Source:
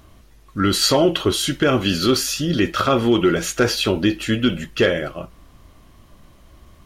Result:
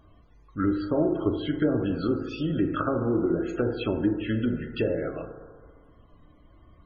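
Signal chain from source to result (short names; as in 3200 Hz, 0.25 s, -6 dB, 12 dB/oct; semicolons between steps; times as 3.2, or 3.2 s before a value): treble ducked by the level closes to 600 Hz, closed at -13 dBFS; FDN reverb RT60 1.7 s, low-frequency decay 0.75×, high-frequency decay 0.35×, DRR 4 dB; loudest bins only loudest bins 64; gain -8 dB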